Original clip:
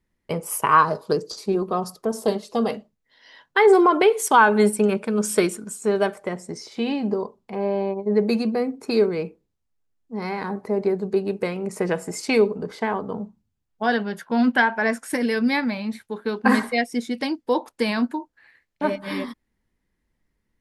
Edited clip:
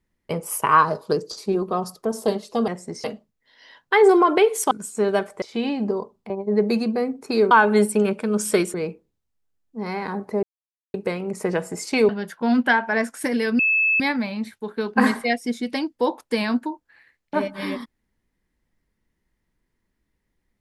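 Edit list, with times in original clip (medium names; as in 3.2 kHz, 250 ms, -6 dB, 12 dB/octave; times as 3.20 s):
4.35–5.58 s: move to 9.10 s
6.29–6.65 s: move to 2.68 s
7.53–7.89 s: delete
10.79–11.30 s: mute
12.45–13.98 s: delete
15.48 s: add tone 2.61 kHz -16 dBFS 0.41 s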